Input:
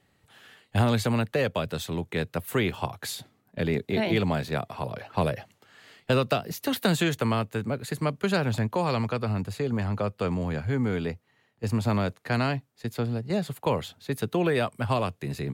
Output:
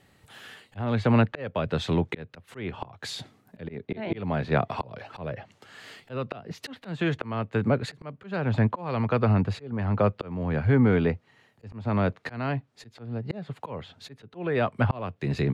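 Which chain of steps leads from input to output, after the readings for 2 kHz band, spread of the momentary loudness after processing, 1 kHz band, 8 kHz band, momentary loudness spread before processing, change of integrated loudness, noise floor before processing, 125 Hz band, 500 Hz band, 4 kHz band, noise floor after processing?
-2.0 dB, 19 LU, -1.5 dB, no reading, 9 LU, 0.0 dB, -68 dBFS, +1.0 dB, -1.0 dB, -5.5 dB, -63 dBFS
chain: low-pass that closes with the level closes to 2.4 kHz, closed at -26 dBFS; slow attack 461 ms; trim +6.5 dB

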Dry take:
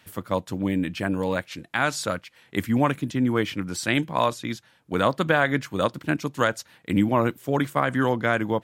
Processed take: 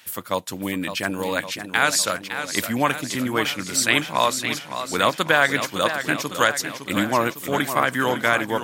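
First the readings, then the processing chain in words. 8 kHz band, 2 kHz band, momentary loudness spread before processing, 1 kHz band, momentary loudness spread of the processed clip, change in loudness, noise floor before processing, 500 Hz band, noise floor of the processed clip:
+12.5 dB, +6.0 dB, 9 LU, +3.5 dB, 8 LU, +3.0 dB, -59 dBFS, +1.0 dB, -39 dBFS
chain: tilt EQ +3 dB/octave; modulated delay 558 ms, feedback 61%, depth 106 cents, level -9.5 dB; trim +3 dB

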